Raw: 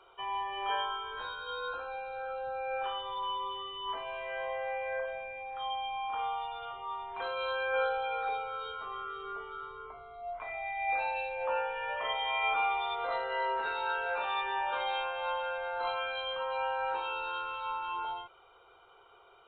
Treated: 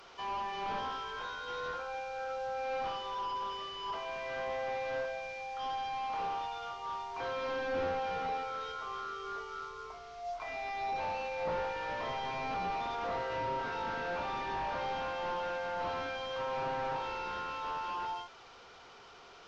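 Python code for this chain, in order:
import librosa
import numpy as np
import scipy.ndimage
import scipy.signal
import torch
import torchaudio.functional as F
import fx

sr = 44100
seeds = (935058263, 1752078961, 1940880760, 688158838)

y = fx.delta_mod(x, sr, bps=32000, step_db=-48.5)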